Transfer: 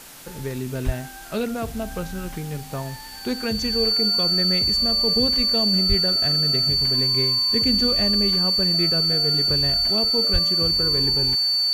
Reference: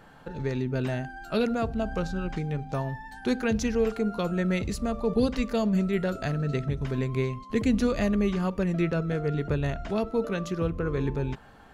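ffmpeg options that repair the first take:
-filter_complex "[0:a]bandreject=f=4500:w=30,asplit=3[s0][s1][s2];[s0]afade=t=out:st=0.85:d=0.02[s3];[s1]highpass=f=140:w=0.5412,highpass=f=140:w=1.3066,afade=t=in:st=0.85:d=0.02,afade=t=out:st=0.97:d=0.02[s4];[s2]afade=t=in:st=0.97:d=0.02[s5];[s3][s4][s5]amix=inputs=3:normalize=0,asplit=3[s6][s7][s8];[s6]afade=t=out:st=5.88:d=0.02[s9];[s7]highpass=f=140:w=0.5412,highpass=f=140:w=1.3066,afade=t=in:st=5.88:d=0.02,afade=t=out:st=6:d=0.02[s10];[s8]afade=t=in:st=6:d=0.02[s11];[s9][s10][s11]amix=inputs=3:normalize=0,asplit=3[s12][s13][s14];[s12]afade=t=out:st=10.32:d=0.02[s15];[s13]highpass=f=140:w=0.5412,highpass=f=140:w=1.3066,afade=t=in:st=10.32:d=0.02,afade=t=out:st=10.44:d=0.02[s16];[s14]afade=t=in:st=10.44:d=0.02[s17];[s15][s16][s17]amix=inputs=3:normalize=0,afwtdn=0.0079"

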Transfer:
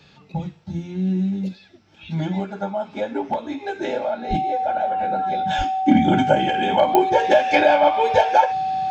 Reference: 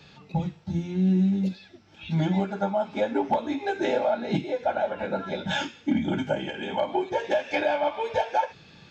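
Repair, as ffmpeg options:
-filter_complex "[0:a]adeclick=t=4,bandreject=f=760:w=30,asplit=3[s0][s1][s2];[s0]afade=t=out:st=4.29:d=0.02[s3];[s1]highpass=f=140:w=0.5412,highpass=f=140:w=1.3066,afade=t=in:st=4.29:d=0.02,afade=t=out:st=4.41:d=0.02[s4];[s2]afade=t=in:st=4.41:d=0.02[s5];[s3][s4][s5]amix=inputs=3:normalize=0,asplit=3[s6][s7][s8];[s6]afade=t=out:st=5.57:d=0.02[s9];[s7]highpass=f=140:w=0.5412,highpass=f=140:w=1.3066,afade=t=in:st=5.57:d=0.02,afade=t=out:st=5.69:d=0.02[s10];[s8]afade=t=in:st=5.69:d=0.02[s11];[s9][s10][s11]amix=inputs=3:normalize=0,asetnsamples=n=441:p=0,asendcmd='5.86 volume volume -9dB',volume=1"

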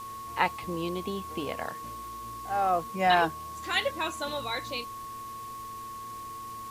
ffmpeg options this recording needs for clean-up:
-af "adeclick=t=4,bandreject=f=112.2:t=h:w=4,bandreject=f=224.4:t=h:w=4,bandreject=f=336.6:t=h:w=4,bandreject=f=448.8:t=h:w=4,bandreject=f=1100:w=30,afwtdn=0.0028"

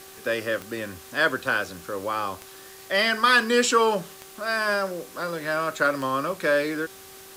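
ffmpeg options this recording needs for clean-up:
-af "adeclick=t=4,bandreject=f=384.6:t=h:w=4,bandreject=f=769.2:t=h:w=4,bandreject=f=1153.8:t=h:w=4,bandreject=f=1538.4:t=h:w=4,afwtdn=0.005"

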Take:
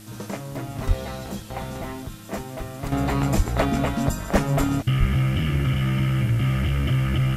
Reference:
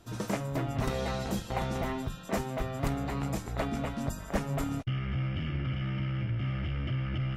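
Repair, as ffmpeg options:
-filter_complex "[0:a]bandreject=f=106.8:t=h:w=4,bandreject=f=213.6:t=h:w=4,bandreject=f=320.4:t=h:w=4,asplit=3[s0][s1][s2];[s0]afade=t=out:st=0.87:d=0.02[s3];[s1]highpass=f=140:w=0.5412,highpass=f=140:w=1.3066,afade=t=in:st=0.87:d=0.02,afade=t=out:st=0.99:d=0.02[s4];[s2]afade=t=in:st=0.99:d=0.02[s5];[s3][s4][s5]amix=inputs=3:normalize=0,asplit=3[s6][s7][s8];[s6]afade=t=out:st=3.36:d=0.02[s9];[s7]highpass=f=140:w=0.5412,highpass=f=140:w=1.3066,afade=t=in:st=3.36:d=0.02,afade=t=out:st=3.48:d=0.02[s10];[s8]afade=t=in:st=3.48:d=0.02[s11];[s9][s10][s11]amix=inputs=3:normalize=0,asplit=3[s12][s13][s14];[s12]afade=t=out:st=4.99:d=0.02[s15];[s13]highpass=f=140:w=0.5412,highpass=f=140:w=1.3066,afade=t=in:st=4.99:d=0.02,afade=t=out:st=5.11:d=0.02[s16];[s14]afade=t=in:st=5.11:d=0.02[s17];[s15][s16][s17]amix=inputs=3:normalize=0,afwtdn=0.004,asetnsamples=n=441:p=0,asendcmd='2.92 volume volume -10.5dB',volume=1"

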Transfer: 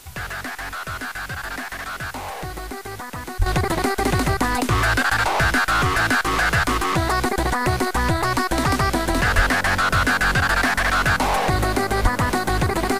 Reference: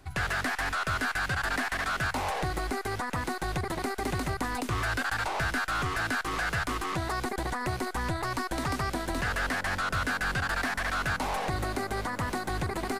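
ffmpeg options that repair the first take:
-filter_complex "[0:a]asplit=3[s0][s1][s2];[s0]afade=t=out:st=3.38:d=0.02[s3];[s1]highpass=f=140:w=0.5412,highpass=f=140:w=1.3066,afade=t=in:st=3.38:d=0.02,afade=t=out:st=3.5:d=0.02[s4];[s2]afade=t=in:st=3.5:d=0.02[s5];[s3][s4][s5]amix=inputs=3:normalize=0,asplit=3[s6][s7][s8];[s6]afade=t=out:st=9.35:d=0.02[s9];[s7]highpass=f=140:w=0.5412,highpass=f=140:w=1.3066,afade=t=in:st=9.35:d=0.02,afade=t=out:st=9.47:d=0.02[s10];[s8]afade=t=in:st=9.47:d=0.02[s11];[s9][s10][s11]amix=inputs=3:normalize=0,asplit=3[s12][s13][s14];[s12]afade=t=out:st=12.02:d=0.02[s15];[s13]highpass=f=140:w=0.5412,highpass=f=140:w=1.3066,afade=t=in:st=12.02:d=0.02,afade=t=out:st=12.14:d=0.02[s16];[s14]afade=t=in:st=12.14:d=0.02[s17];[s15][s16][s17]amix=inputs=3:normalize=0,afwtdn=0.0063,asetnsamples=n=441:p=0,asendcmd='3.46 volume volume -11dB',volume=1"

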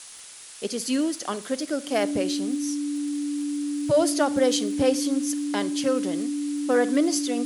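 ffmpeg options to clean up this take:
-af "adeclick=t=4,bandreject=f=290:w=30,afftdn=nr=30:nf=-40"

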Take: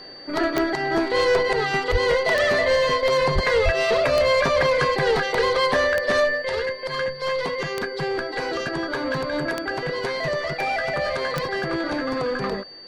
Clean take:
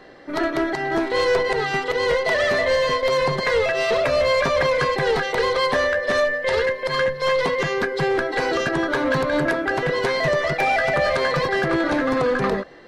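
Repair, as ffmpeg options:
-filter_complex "[0:a]adeclick=t=4,bandreject=f=4600:w=30,asplit=3[s0][s1][s2];[s0]afade=t=out:st=1.91:d=0.02[s3];[s1]highpass=f=140:w=0.5412,highpass=f=140:w=1.3066,afade=t=in:st=1.91:d=0.02,afade=t=out:st=2.03:d=0.02[s4];[s2]afade=t=in:st=2.03:d=0.02[s5];[s3][s4][s5]amix=inputs=3:normalize=0,asplit=3[s6][s7][s8];[s6]afade=t=out:st=3.34:d=0.02[s9];[s7]highpass=f=140:w=0.5412,highpass=f=140:w=1.3066,afade=t=in:st=3.34:d=0.02,afade=t=out:st=3.46:d=0.02[s10];[s8]afade=t=in:st=3.46:d=0.02[s11];[s9][s10][s11]amix=inputs=3:normalize=0,asplit=3[s12][s13][s14];[s12]afade=t=out:st=3.64:d=0.02[s15];[s13]highpass=f=140:w=0.5412,highpass=f=140:w=1.3066,afade=t=in:st=3.64:d=0.02,afade=t=out:st=3.76:d=0.02[s16];[s14]afade=t=in:st=3.76:d=0.02[s17];[s15][s16][s17]amix=inputs=3:normalize=0,asetnsamples=n=441:p=0,asendcmd='6.42 volume volume 5dB',volume=1"

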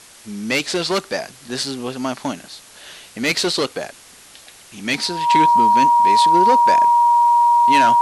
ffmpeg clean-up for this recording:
-af "bandreject=f=950:w=30,afwtdn=0.0079"

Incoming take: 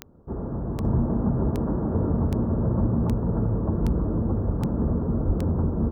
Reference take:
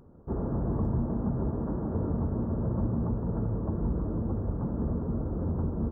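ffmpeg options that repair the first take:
-filter_complex "[0:a]adeclick=t=4,asplit=3[s0][s1][s2];[s0]afade=t=out:st=5.26:d=0.02[s3];[s1]highpass=f=140:w=0.5412,highpass=f=140:w=1.3066,afade=t=in:st=5.26:d=0.02,afade=t=out:st=5.38:d=0.02[s4];[s2]afade=t=in:st=5.38:d=0.02[s5];[s3][s4][s5]amix=inputs=3:normalize=0,asetnsamples=n=441:p=0,asendcmd='0.84 volume volume -6dB',volume=1"

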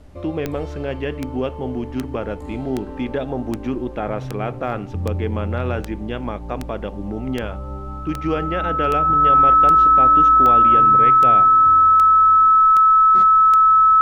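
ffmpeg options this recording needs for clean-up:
-af "adeclick=t=4,bandreject=f=1300:w=30,agate=range=0.0891:threshold=0.0708"

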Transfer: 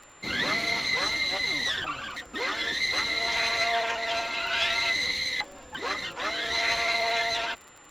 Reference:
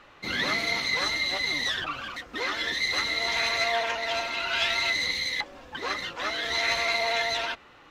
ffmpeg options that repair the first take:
-af "adeclick=t=4,bandreject=f=7200:w=30"

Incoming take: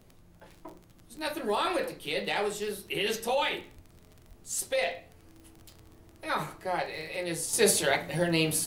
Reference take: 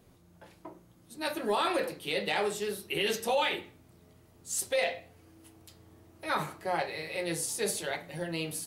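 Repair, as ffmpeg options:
-filter_complex "[0:a]adeclick=t=4,asplit=3[s0][s1][s2];[s0]afade=t=out:st=3.75:d=0.02[s3];[s1]highpass=f=140:w=0.5412,highpass=f=140:w=1.3066,afade=t=in:st=3.75:d=0.02,afade=t=out:st=3.87:d=0.02[s4];[s2]afade=t=in:st=3.87:d=0.02[s5];[s3][s4][s5]amix=inputs=3:normalize=0,asplit=3[s6][s7][s8];[s6]afade=t=out:st=4.28:d=0.02[s9];[s7]highpass=f=140:w=0.5412,highpass=f=140:w=1.3066,afade=t=in:st=4.28:d=0.02,afade=t=out:st=4.4:d=0.02[s10];[s8]afade=t=in:st=4.4:d=0.02[s11];[s9][s10][s11]amix=inputs=3:normalize=0,agate=range=0.0891:threshold=0.00398,asetnsamples=n=441:p=0,asendcmd='7.53 volume volume -8.5dB',volume=1"

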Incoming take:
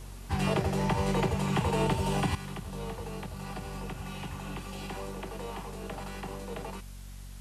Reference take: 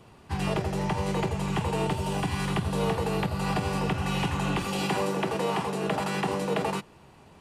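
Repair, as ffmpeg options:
-af "bandreject=f=46.9:t=h:w=4,bandreject=f=93.8:t=h:w=4,bandreject=f=140.7:t=h:w=4,bandreject=f=187.6:t=h:w=4,bandreject=f=234.5:t=h:w=4,afwtdn=0.002,asetnsamples=n=441:p=0,asendcmd='2.35 volume volume 12dB',volume=1"

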